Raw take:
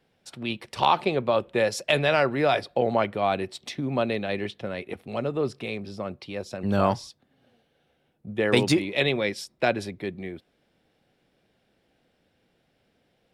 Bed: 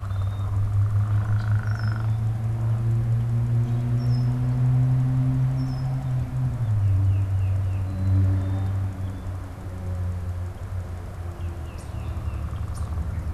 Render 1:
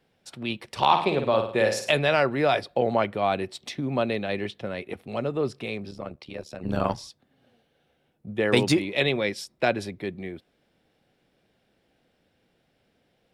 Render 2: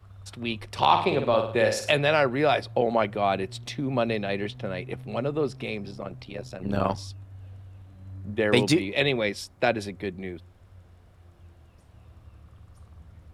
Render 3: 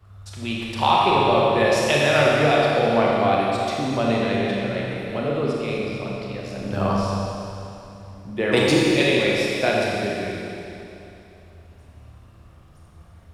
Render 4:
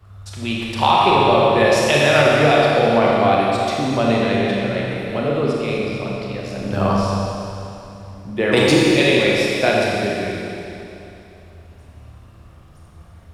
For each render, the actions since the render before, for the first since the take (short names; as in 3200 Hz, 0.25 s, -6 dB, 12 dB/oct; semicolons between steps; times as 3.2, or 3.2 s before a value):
0.84–1.9 flutter echo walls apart 9.2 m, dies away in 0.49 s; 5.91–6.98 AM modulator 74 Hz, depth 70%
add bed -20.5 dB
Schroeder reverb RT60 2.9 s, combs from 27 ms, DRR -4 dB
gain +4 dB; limiter -3 dBFS, peak gain reduction 2.5 dB